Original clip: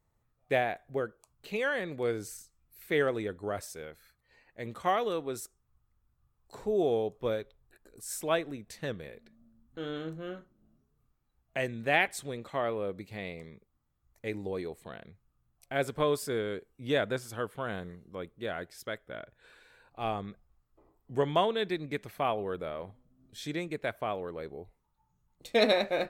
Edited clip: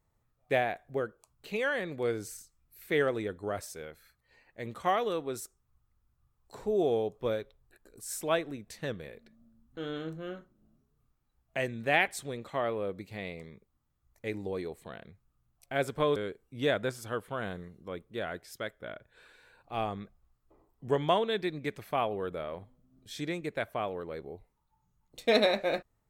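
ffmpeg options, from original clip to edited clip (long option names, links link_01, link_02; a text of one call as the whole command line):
ffmpeg -i in.wav -filter_complex "[0:a]asplit=2[link_01][link_02];[link_01]atrim=end=16.162[link_03];[link_02]atrim=start=16.428[link_04];[link_03][link_04]acrossfade=duration=0.004:curve1=hsin:curve2=hsin" out.wav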